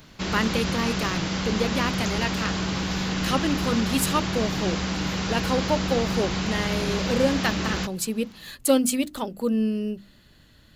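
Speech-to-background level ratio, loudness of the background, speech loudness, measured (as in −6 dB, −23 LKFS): 0.0 dB, −27.0 LKFS, −27.0 LKFS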